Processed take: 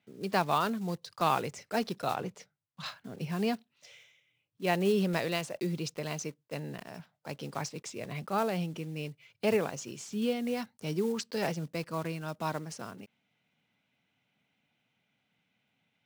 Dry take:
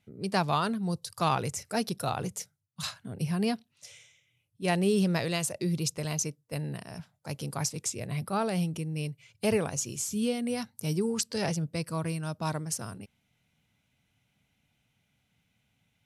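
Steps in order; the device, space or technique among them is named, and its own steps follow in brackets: early digital voice recorder (band-pass 210–3800 Hz; block-companded coder 5-bit); 2.15–2.86 s: treble shelf 4.4 kHz -8 dB

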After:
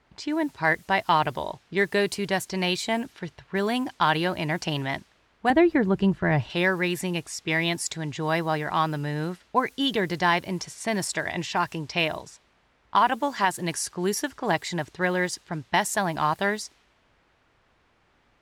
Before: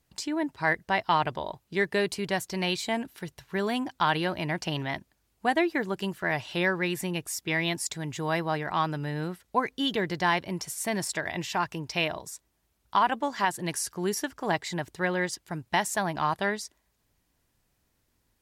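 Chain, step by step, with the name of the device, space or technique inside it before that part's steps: cassette deck with a dynamic noise filter (white noise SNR 29 dB; level-controlled noise filter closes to 1.8 kHz, open at -25.5 dBFS); 5.50–6.50 s: RIAA curve playback; trim +3 dB

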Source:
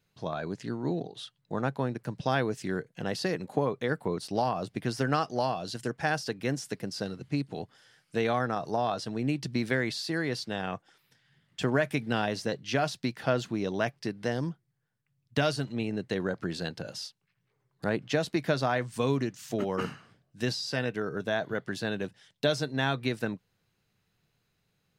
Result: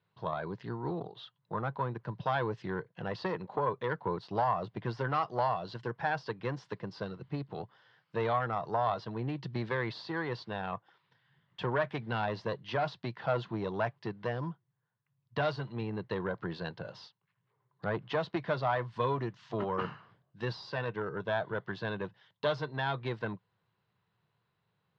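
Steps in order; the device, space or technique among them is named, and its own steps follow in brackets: guitar amplifier (valve stage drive 20 dB, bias 0.55; tone controls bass 0 dB, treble -5 dB; cabinet simulation 100–4100 Hz, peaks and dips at 110 Hz +4 dB, 260 Hz -10 dB, 1 kHz +10 dB, 2.4 kHz -5 dB)

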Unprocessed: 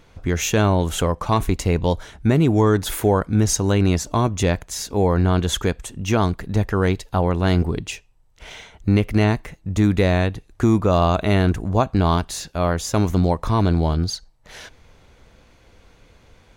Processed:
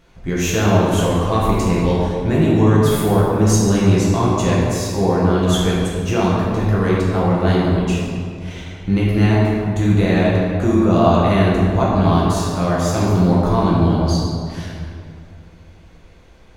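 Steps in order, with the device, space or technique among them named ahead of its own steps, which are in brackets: stairwell (reverberation RT60 2.4 s, pre-delay 5 ms, DRR -6.5 dB); 9.74–10.16 s: band-stop 5.2 kHz, Q 7; trim -4.5 dB

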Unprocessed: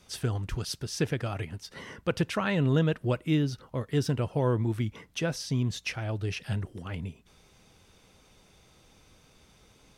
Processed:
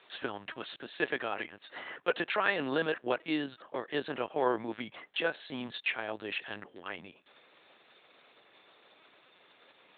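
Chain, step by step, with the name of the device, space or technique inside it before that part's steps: talking toy (LPC vocoder at 8 kHz pitch kept; high-pass 490 Hz 12 dB/octave; peaking EQ 1.7 kHz +5 dB 0.2 oct); trim +2.5 dB

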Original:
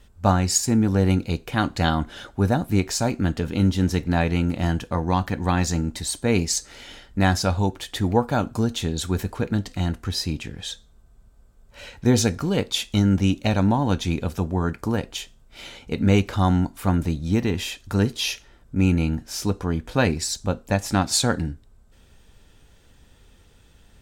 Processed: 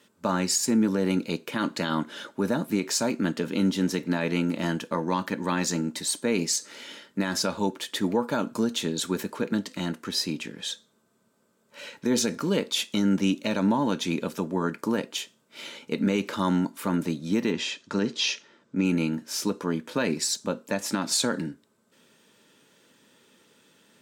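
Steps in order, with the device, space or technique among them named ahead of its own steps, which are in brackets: PA system with an anti-feedback notch (high-pass 190 Hz 24 dB/octave; Butterworth band-stop 750 Hz, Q 5.1; peak limiter -14.5 dBFS, peak gain reduction 9 dB); 17.52–18.85 s: low-pass 6.9 kHz 24 dB/octave

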